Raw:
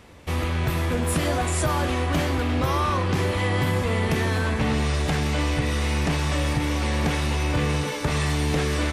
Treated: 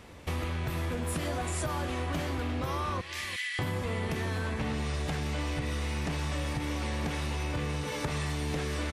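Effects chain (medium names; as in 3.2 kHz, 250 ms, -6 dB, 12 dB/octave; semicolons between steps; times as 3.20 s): 3.01–3.59 s: Chebyshev high-pass 1.8 kHz, order 4; echo from a far wall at 60 m, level -19 dB; compression 4:1, threshold -29 dBFS, peak gain reduction 9 dB; 5.42–6.23 s: hard clipper -23.5 dBFS, distortion -44 dB; trim -1.5 dB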